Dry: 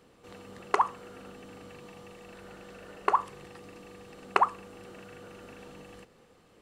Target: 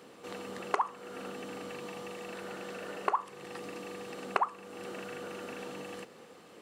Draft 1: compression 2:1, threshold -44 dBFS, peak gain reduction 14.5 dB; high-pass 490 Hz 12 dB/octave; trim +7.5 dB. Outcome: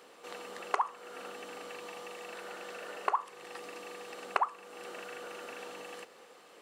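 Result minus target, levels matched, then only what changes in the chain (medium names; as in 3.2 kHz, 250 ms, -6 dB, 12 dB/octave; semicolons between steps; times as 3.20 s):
250 Hz band -8.0 dB
change: high-pass 200 Hz 12 dB/octave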